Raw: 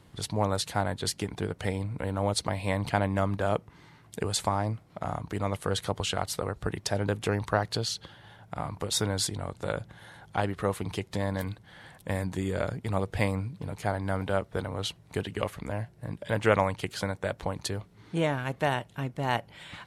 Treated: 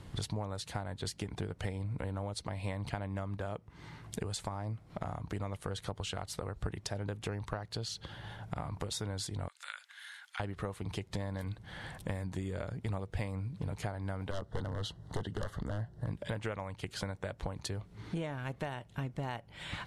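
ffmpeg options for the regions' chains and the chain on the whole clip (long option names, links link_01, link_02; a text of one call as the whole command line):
ffmpeg -i in.wav -filter_complex "[0:a]asettb=1/sr,asplit=3[link_01][link_02][link_03];[link_01]atrim=end=9.484[link_04];[link_02]atrim=start=9.48:end=10.4,asetpts=PTS-STARTPTS,afade=type=in:duration=0.004:curve=qsin,afade=type=out:start_time=0.916:duration=0.004:curve=qsin,highpass=frequency=1500:width=0.5412,highpass=frequency=1500:width=1.3066,acompressor=threshold=-46dB:ratio=1.5:attack=3.2:release=140:knee=1:detection=peak,bandreject=frequency=5700:width=27[link_05];[link_03]atrim=start=10.396[link_06];[link_04][link_05]acrossfade=duration=0.004:curve1=hsin:curve2=qsin[link_07];[link_07][link_06]acrossfade=duration=0.004:curve1=qsin:curve2=hsin,asettb=1/sr,asplit=3[link_08][link_09][link_10];[link_08]atrim=end=14.314[link_11];[link_09]atrim=start=14.31:end=16.07,asetpts=PTS-STARTPTS,afade=type=in:duration=0.004:curve=qsin,afade=type=out:start_time=1.756:duration=0.004:curve=qsin,highshelf=frequency=5600:gain=-9,aeval=exprs='0.0501*(abs(mod(val(0)/0.0501+3,4)-2)-1)':channel_layout=same,asuperstop=centerf=2400:order=4:qfactor=2.3[link_12];[link_10]atrim=start=16.066[link_13];[link_11][link_12]acrossfade=duration=0.004:curve1=hsin:curve2=qsin[link_14];[link_14][link_13]acrossfade=duration=0.004:curve1=qsin:curve2=hsin,acompressor=threshold=-40dB:ratio=8,lowpass=11000,lowshelf=frequency=80:gain=11.5,volume=3.5dB" out.wav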